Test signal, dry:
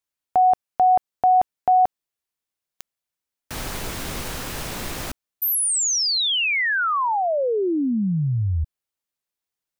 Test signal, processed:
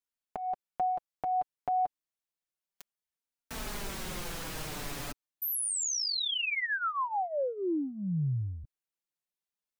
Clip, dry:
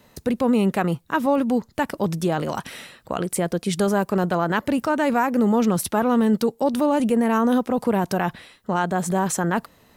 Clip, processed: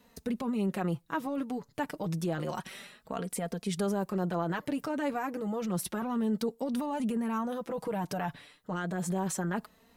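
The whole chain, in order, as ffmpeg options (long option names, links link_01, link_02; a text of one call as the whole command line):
ffmpeg -i in.wav -af "acompressor=threshold=-22dB:ratio=6:attack=9.5:release=28:knee=6:detection=rms,flanger=delay=4.1:depth=3:regen=3:speed=0.3:shape=triangular,volume=-5dB" out.wav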